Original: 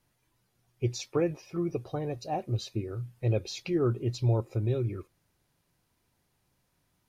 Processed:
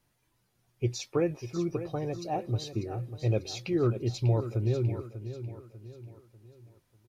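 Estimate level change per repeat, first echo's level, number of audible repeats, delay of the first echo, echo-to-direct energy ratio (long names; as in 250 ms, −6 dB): −7.5 dB, −11.5 dB, 4, 594 ms, −10.5 dB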